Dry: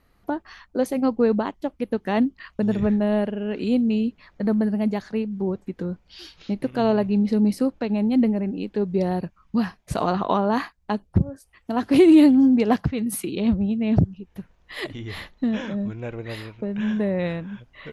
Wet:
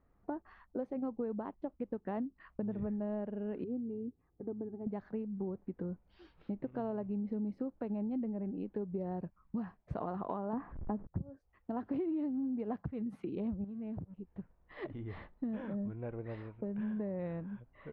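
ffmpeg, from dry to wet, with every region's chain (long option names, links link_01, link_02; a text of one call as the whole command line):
ffmpeg -i in.wav -filter_complex "[0:a]asettb=1/sr,asplit=3[link_01][link_02][link_03];[link_01]atrim=end=3.644[link_04];[link_02]atrim=start=3.64:end=4.87,asetpts=PTS-STARTPTS,afade=type=in:duration=0.004:curve=qsin,afade=type=out:start_time=1.226:duration=0.004:curve=qsin,bandpass=frequency=170:width_type=q:width=1.1,aecho=1:1:2.5:0.85,atrim=end_sample=54243[link_05];[link_03]atrim=start=4.866[link_06];[link_04][link_05]acrossfade=duration=0.004:curve1=hsin:curve2=qsin[link_07];[link_07][link_06]acrossfade=duration=0.004:curve1=qsin:curve2=hsin,asettb=1/sr,asplit=3[link_08][link_09][link_10];[link_08]atrim=end=10.534[link_11];[link_09]atrim=start=10.53:end=11.07,asetpts=PTS-STARTPTS,afade=type=in:duration=0.004:curve=qsin,afade=type=out:start_time=0.536:duration=0.004:curve=qsin,aeval=exprs='val(0)+0.5*0.0188*sgn(val(0))':channel_layout=same,lowpass=1700,lowshelf=frequency=400:gain=10[link_12];[link_10]atrim=start=11.066[link_13];[link_11][link_12]acrossfade=duration=0.004:curve1=hsin:curve2=qsin[link_14];[link_14][link_13]acrossfade=duration=0.004:curve1=qsin:curve2=hsin,asettb=1/sr,asplit=3[link_15][link_16][link_17];[link_15]atrim=end=13.644[link_18];[link_16]atrim=start=13.64:end=14.19,asetpts=PTS-STARTPTS,afade=type=in:duration=0.004:curve=qsin,afade=type=out:start_time=0.546:duration=0.004:curve=qsin,acompressor=threshold=-30dB:ratio=6:attack=3.2:release=140:knee=1:detection=peak,aeval=exprs='sgn(val(0))*max(abs(val(0))-0.002,0)':channel_layout=same[link_19];[link_17]atrim=start=14.186[link_20];[link_18][link_19]acrossfade=duration=0.004:curve1=hsin:curve2=qsin[link_21];[link_21][link_20]acrossfade=duration=0.004:curve1=qsin:curve2=hsin,lowpass=1200,acompressor=threshold=-26dB:ratio=6,volume=-8.5dB" out.wav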